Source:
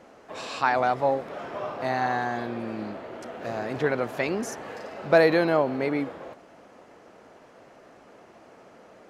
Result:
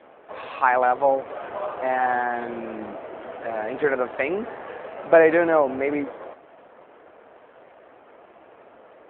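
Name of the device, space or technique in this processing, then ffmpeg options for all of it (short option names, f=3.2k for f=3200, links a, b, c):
telephone: -af "highpass=330,lowpass=3.1k,volume=5dB" -ar 8000 -c:a libopencore_amrnb -b:a 7400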